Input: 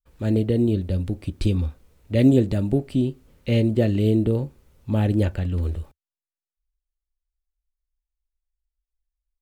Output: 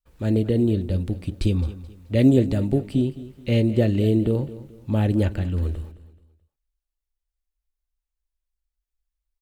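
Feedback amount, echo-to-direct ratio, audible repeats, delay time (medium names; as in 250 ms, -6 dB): 34%, -15.5 dB, 3, 215 ms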